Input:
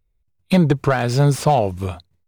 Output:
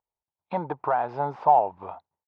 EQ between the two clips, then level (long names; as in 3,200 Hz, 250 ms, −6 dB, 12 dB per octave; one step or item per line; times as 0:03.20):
resonant band-pass 870 Hz, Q 5.5
high-frequency loss of the air 220 metres
+6.5 dB